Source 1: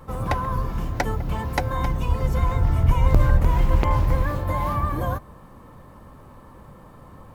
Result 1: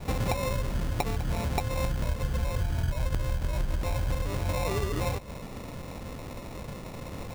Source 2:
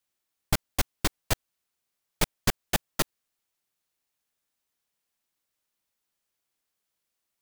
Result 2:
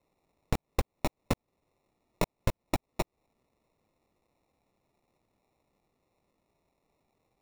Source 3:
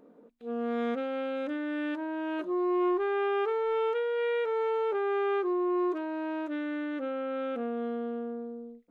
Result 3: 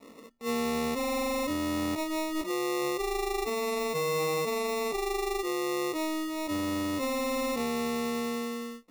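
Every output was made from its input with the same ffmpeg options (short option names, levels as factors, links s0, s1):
-af "acompressor=threshold=0.0282:ratio=10,adynamicequalizer=threshold=0.00355:dfrequency=370:dqfactor=2.9:tfrequency=370:tqfactor=2.9:attack=5:release=100:ratio=0.375:range=2.5:mode=cutabove:tftype=bell,acrusher=samples=28:mix=1:aa=0.000001,volume=2"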